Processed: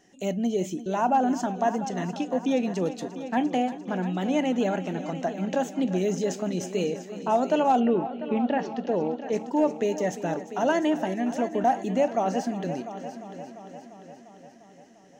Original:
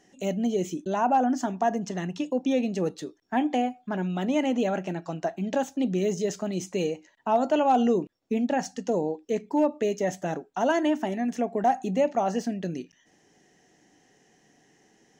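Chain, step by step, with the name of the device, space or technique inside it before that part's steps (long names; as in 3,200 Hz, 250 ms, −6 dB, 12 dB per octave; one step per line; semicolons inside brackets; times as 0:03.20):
multi-head tape echo (echo machine with several playback heads 348 ms, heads first and second, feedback 57%, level −15 dB; tape wow and flutter 19 cents)
0:07.79–0:09.31: low-pass filter 3,000 Hz → 5,200 Hz 24 dB per octave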